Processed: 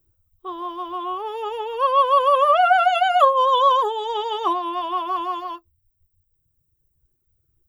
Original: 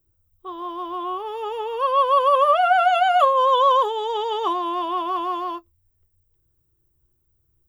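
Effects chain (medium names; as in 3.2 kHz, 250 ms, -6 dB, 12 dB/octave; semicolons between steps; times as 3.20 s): reverb removal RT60 1.8 s; trim +2.5 dB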